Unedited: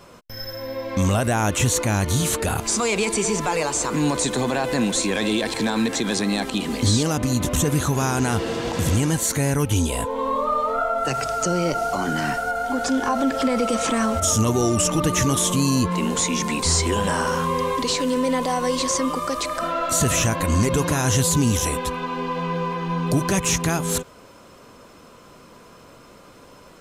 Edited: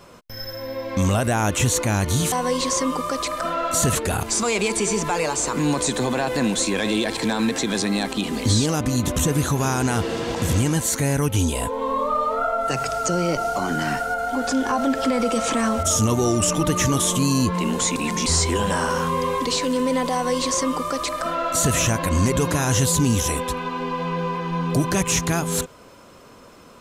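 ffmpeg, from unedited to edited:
-filter_complex "[0:a]asplit=5[s0][s1][s2][s3][s4];[s0]atrim=end=2.322[s5];[s1]atrim=start=18.498:end=20.132[s6];[s2]atrim=start=2.318:end=16.332[s7];[s3]atrim=start=16.328:end=16.632,asetpts=PTS-STARTPTS,areverse[s8];[s4]atrim=start=16.628[s9];[s5][s6]acrossfade=d=0.004:c1=hsin:c2=hsin[s10];[s10][s7]acrossfade=d=0.004:c1=hsin:c2=hsin[s11];[s11][s8]acrossfade=d=0.004:c1=hsin:c2=hsin[s12];[s12][s9]acrossfade=d=0.004:c1=hsin:c2=hsin"

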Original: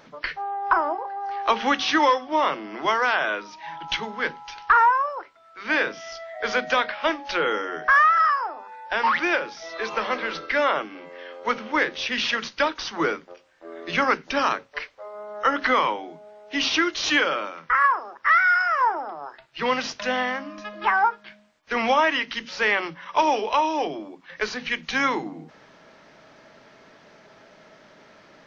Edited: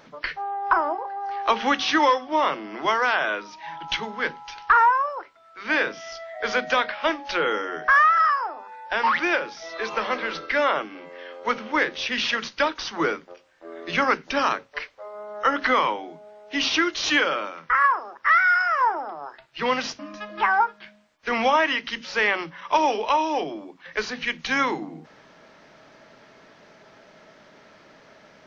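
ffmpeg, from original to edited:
-filter_complex "[0:a]asplit=2[s0][s1];[s0]atrim=end=19.992[s2];[s1]atrim=start=20.428[s3];[s2][s3]acrossfade=d=0.004:c1=hsin:c2=hsin"

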